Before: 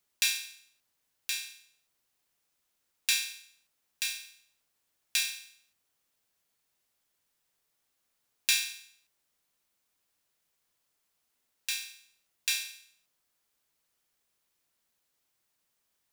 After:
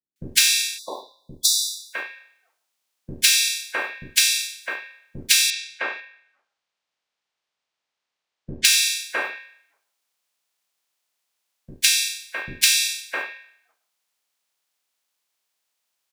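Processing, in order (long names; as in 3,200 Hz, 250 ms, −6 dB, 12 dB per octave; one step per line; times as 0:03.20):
spectral magnitudes quantised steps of 30 dB
noise gate with hold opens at −60 dBFS
on a send at −14.5 dB: convolution reverb RT60 0.30 s, pre-delay 102 ms
on the sum: mid-hump overdrive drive 23 dB, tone 7,800 Hz, clips at −7 dBFS
0:05.34–0:08.49: high-frequency loss of the air 120 metres
three-band delay without the direct sound lows, highs, mids 160/660 ms, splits 340/1,600 Hz
downward compressor 4 to 1, threshold −23 dBFS, peak gain reduction 7.5 dB
0:00.78–0:01.93: time-frequency box erased 1,100–3,400 Hz
level +8.5 dB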